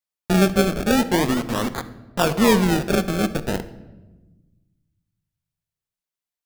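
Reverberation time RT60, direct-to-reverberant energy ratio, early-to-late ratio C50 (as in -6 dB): 1.2 s, 11.0 dB, 14.0 dB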